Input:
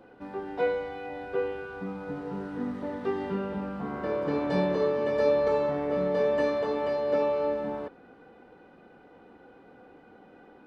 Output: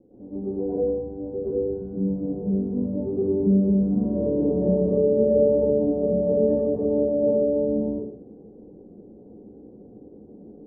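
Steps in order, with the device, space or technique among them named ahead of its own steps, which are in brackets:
next room (low-pass filter 430 Hz 24 dB per octave; convolution reverb RT60 0.60 s, pre-delay 101 ms, DRR −11.5 dB)

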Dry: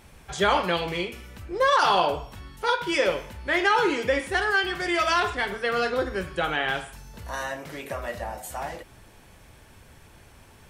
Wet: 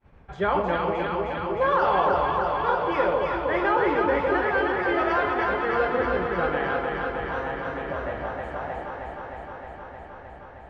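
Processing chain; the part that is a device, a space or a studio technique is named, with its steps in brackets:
hearing-loss simulation (low-pass filter 1,600 Hz 12 dB per octave; downward expander −48 dBFS)
delay that swaps between a low-pass and a high-pass 155 ms, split 840 Hz, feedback 89%, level −2 dB
level −1.5 dB

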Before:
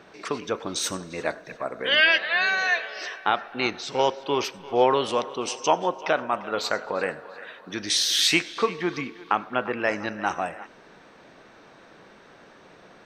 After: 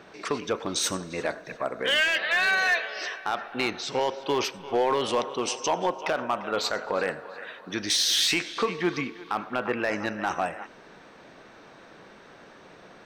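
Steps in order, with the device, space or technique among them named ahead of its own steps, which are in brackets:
limiter into clipper (brickwall limiter −14 dBFS, peak gain reduction 7 dB; hard clipping −18 dBFS, distortion −19 dB)
level +1 dB

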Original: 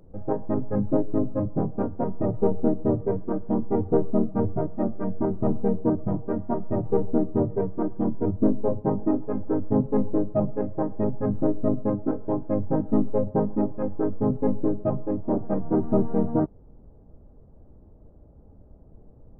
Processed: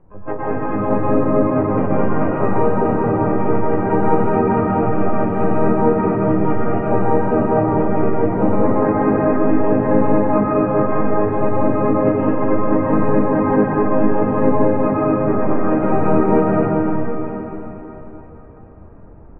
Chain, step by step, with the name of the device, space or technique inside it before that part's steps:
Chebyshev low-pass filter 1,300 Hz, order 4
shimmer-style reverb (pitch-shifted copies added +12 semitones −4 dB; convolution reverb RT60 4.2 s, pre-delay 105 ms, DRR −8.5 dB)
level −1 dB

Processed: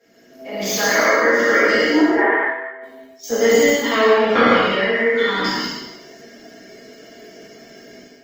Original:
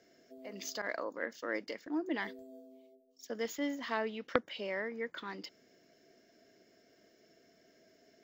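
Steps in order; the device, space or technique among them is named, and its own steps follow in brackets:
peak hold with a decay on every bin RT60 1.01 s
0:02.01–0:02.83: Chebyshev band-pass filter 400–1,900 Hz, order 3
reverb whose tail is shaped and stops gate 220 ms flat, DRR −3 dB
far-field microphone of a smart speaker (convolution reverb RT60 0.40 s, pre-delay 4 ms, DRR −8 dB; high-pass filter 97 Hz 24 dB per octave; automatic gain control gain up to 8.5 dB; Opus 20 kbit/s 48,000 Hz)

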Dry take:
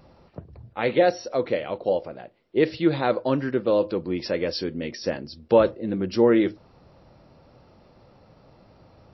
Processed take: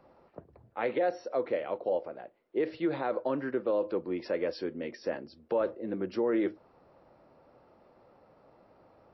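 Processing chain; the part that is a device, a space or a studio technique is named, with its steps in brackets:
DJ mixer with the lows and highs turned down (three-way crossover with the lows and the highs turned down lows −13 dB, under 260 Hz, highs −13 dB, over 2,200 Hz; brickwall limiter −17 dBFS, peak gain reduction 9 dB)
level −3.5 dB

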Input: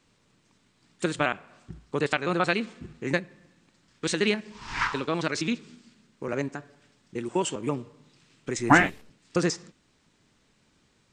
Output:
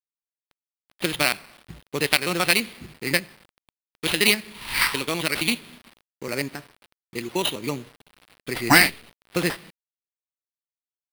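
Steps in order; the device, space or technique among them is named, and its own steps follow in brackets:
flat-topped bell 2,700 Hz +11.5 dB 1.2 octaves
early 8-bit sampler (sample-rate reduction 6,800 Hz, jitter 0%; bit reduction 8 bits)

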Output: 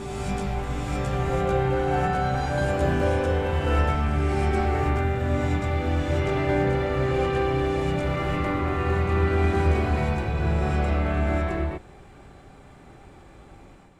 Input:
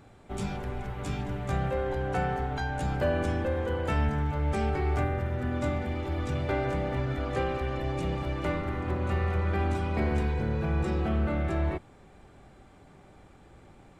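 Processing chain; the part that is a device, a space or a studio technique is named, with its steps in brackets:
reverse reverb (reversed playback; convolution reverb RT60 2.2 s, pre-delay 97 ms, DRR −5.5 dB; reversed playback)

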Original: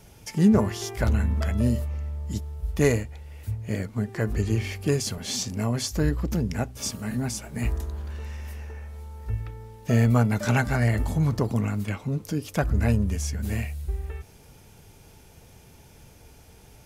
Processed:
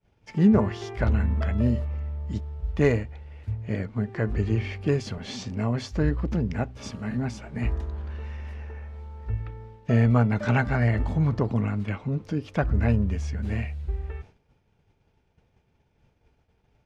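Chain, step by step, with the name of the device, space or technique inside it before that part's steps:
hearing-loss simulation (low-pass filter 3,000 Hz 12 dB per octave; downward expander −40 dBFS)

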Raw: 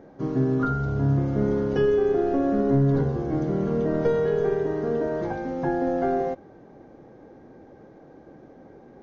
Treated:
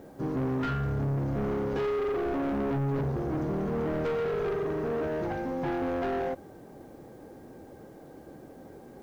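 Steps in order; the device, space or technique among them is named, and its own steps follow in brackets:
open-reel tape (soft clipping −27 dBFS, distortion −8 dB; parametric band 78 Hz +3.5 dB; white noise bed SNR 38 dB)

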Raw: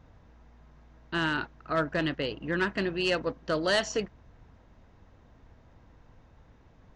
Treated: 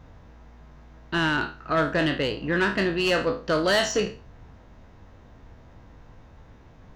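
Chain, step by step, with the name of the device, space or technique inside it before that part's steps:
peak hold with a decay on every bin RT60 0.34 s
saturation between pre-emphasis and de-emphasis (high-shelf EQ 3,400 Hz +10.5 dB; soft clipping −19.5 dBFS, distortion −16 dB; high-shelf EQ 3,400 Hz −10.5 dB)
level +6 dB

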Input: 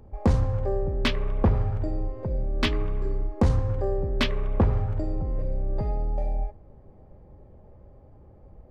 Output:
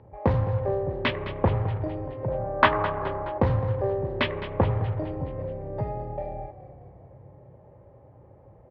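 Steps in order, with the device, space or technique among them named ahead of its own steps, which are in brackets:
0:02.28–0:03.38: flat-topped bell 1,000 Hz +13 dB
frequency-shifting delay pedal into a guitar cabinet (echo with shifted repeats 211 ms, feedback 58%, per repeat −34 Hz, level −13.5 dB; loudspeaker in its box 100–3,400 Hz, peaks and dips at 120 Hz +7 dB, 220 Hz −6 dB, 560 Hz +5 dB, 930 Hz +6 dB, 1,900 Hz +4 dB)

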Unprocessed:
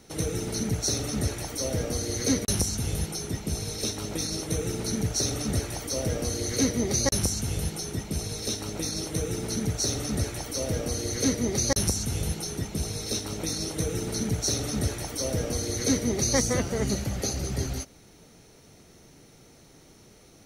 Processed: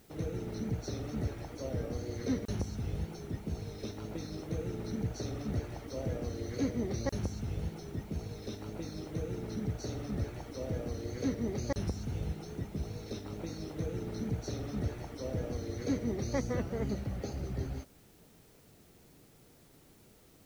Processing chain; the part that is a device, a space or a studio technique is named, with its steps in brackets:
cassette deck with a dirty head (head-to-tape spacing loss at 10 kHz 28 dB; tape wow and flutter; white noise bed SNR 29 dB)
level −6 dB

